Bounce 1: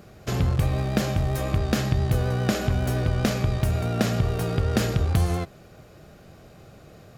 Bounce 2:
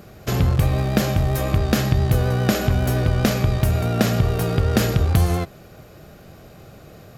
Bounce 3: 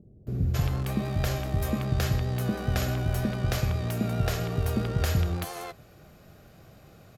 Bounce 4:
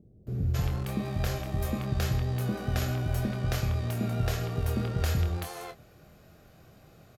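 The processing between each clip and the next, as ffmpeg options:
-af "equalizer=f=12k:w=6.9:g=8.5,volume=4.5dB"
-filter_complex "[0:a]acrossover=split=420[a][b];[b]adelay=270[c];[a][c]amix=inputs=2:normalize=0,volume=-8dB"
-filter_complex "[0:a]asplit=2[a][b];[b]adelay=25,volume=-7dB[c];[a][c]amix=inputs=2:normalize=0,volume=-3.5dB"

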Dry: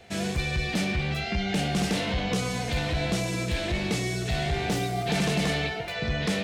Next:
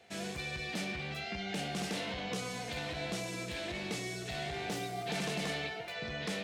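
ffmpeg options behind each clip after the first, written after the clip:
-af "highpass=f=250:p=1,volume=-8dB"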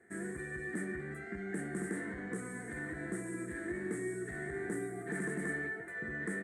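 -af "firequalizer=gain_entry='entry(120,0);entry(360,12);entry(520,-5);entry(830,-8);entry(1800,11);entry(2600,-24);entry(5200,-26);entry(8400,8);entry(14000,-13)':delay=0.05:min_phase=1,volume=-4.5dB"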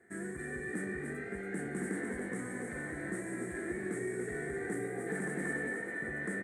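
-filter_complex "[0:a]asplit=7[a][b][c][d][e][f][g];[b]adelay=284,afreqshift=51,volume=-5dB[h];[c]adelay=568,afreqshift=102,volume=-11.6dB[i];[d]adelay=852,afreqshift=153,volume=-18.1dB[j];[e]adelay=1136,afreqshift=204,volume=-24.7dB[k];[f]adelay=1420,afreqshift=255,volume=-31.2dB[l];[g]adelay=1704,afreqshift=306,volume=-37.8dB[m];[a][h][i][j][k][l][m]amix=inputs=7:normalize=0"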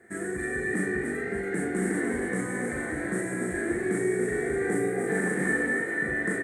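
-filter_complex "[0:a]asplit=2[a][b];[b]adelay=38,volume=-3dB[c];[a][c]amix=inputs=2:normalize=0,volume=7.5dB"

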